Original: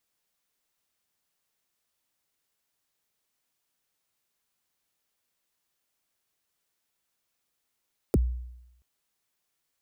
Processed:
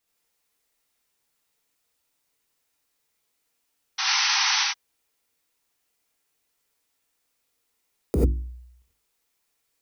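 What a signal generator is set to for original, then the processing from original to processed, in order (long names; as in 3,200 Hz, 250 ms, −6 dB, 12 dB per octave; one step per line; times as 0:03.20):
synth kick length 0.68 s, from 520 Hz, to 61 Hz, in 31 ms, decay 0.87 s, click on, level −16.5 dB
mains-hum notches 50/100/150/200/250/300/350 Hz
sound drawn into the spectrogram noise, 0:03.98–0:04.64, 750–6,200 Hz −27 dBFS
reverb whose tail is shaped and stops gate 110 ms rising, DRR −3.5 dB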